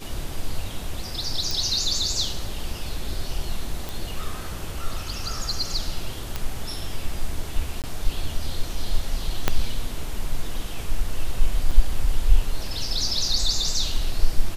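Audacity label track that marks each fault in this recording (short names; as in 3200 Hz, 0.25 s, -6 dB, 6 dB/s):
1.510000	1.510000	pop
3.890000	3.890000	pop
6.360000	6.360000	pop -12 dBFS
7.820000	7.840000	gap 18 ms
9.480000	9.480000	pop -4 dBFS
11.710000	11.710000	gap 4.5 ms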